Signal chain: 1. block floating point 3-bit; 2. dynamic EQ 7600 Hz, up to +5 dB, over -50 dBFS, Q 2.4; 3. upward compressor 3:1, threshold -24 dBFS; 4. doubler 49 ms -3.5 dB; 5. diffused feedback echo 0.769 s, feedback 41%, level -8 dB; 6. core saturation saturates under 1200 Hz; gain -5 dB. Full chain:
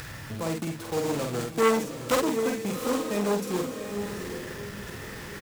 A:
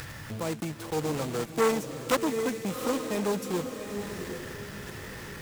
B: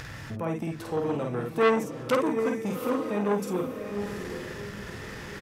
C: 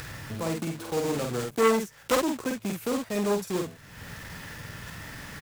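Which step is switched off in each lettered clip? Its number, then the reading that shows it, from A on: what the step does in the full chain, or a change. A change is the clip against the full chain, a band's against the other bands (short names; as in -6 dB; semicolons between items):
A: 4, loudness change -2.0 LU; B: 1, distortion -13 dB; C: 5, momentary loudness spread change +2 LU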